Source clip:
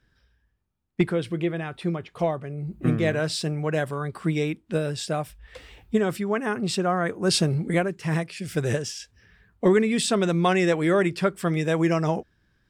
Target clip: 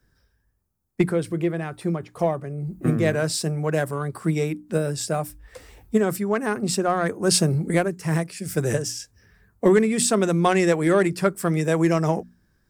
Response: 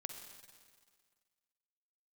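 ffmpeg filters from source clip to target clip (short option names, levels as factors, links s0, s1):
-filter_complex "[0:a]highshelf=f=8100:g=10.5,bandreject=f=60:t=h:w=6,bandreject=f=120:t=h:w=6,bandreject=f=180:t=h:w=6,bandreject=f=240:t=h:w=6,bandreject=f=300:t=h:w=6,acrossover=split=190|4000[s0][s1][s2];[s1]adynamicsmooth=sensitivity=1:basefreq=2100[s3];[s0][s3][s2]amix=inputs=3:normalize=0,volume=1.33"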